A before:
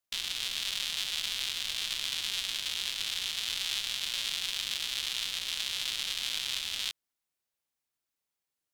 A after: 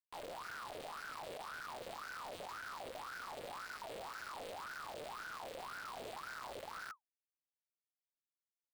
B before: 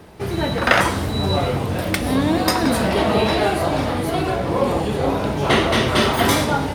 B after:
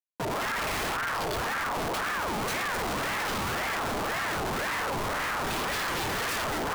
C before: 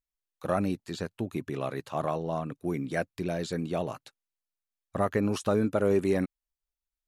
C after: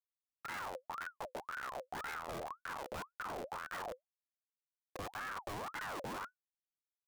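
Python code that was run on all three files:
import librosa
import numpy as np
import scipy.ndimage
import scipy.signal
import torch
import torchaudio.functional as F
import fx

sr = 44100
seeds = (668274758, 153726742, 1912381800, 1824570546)

y = fx.schmitt(x, sr, flips_db=-29.5)
y = fx.ring_lfo(y, sr, carrier_hz=1000.0, swing_pct=50, hz=1.9)
y = F.gain(torch.from_numpy(y), -8.0).numpy()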